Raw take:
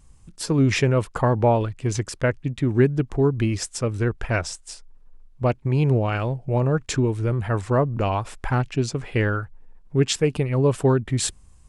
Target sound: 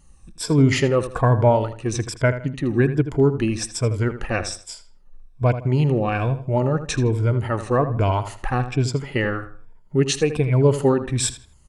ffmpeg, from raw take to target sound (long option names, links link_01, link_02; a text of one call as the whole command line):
ffmpeg -i in.wav -filter_complex "[0:a]afftfilt=real='re*pow(10,11/40*sin(2*PI*(1.7*log(max(b,1)*sr/1024/100)/log(2)-(-1.2)*(pts-256)/sr)))':imag='im*pow(10,11/40*sin(2*PI*(1.7*log(max(b,1)*sr/1024/100)/log(2)-(-1.2)*(pts-256)/sr)))':win_size=1024:overlap=0.75,asplit=2[link_01][link_02];[link_02]adelay=80,lowpass=frequency=4300:poles=1,volume=-11.5dB,asplit=2[link_03][link_04];[link_04]adelay=80,lowpass=frequency=4300:poles=1,volume=0.32,asplit=2[link_05][link_06];[link_06]adelay=80,lowpass=frequency=4300:poles=1,volume=0.32[link_07];[link_01][link_03][link_05][link_07]amix=inputs=4:normalize=0" out.wav